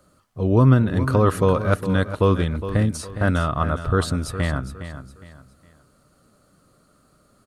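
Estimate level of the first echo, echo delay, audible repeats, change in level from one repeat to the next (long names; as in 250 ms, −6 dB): −11.5 dB, 411 ms, 3, −10.0 dB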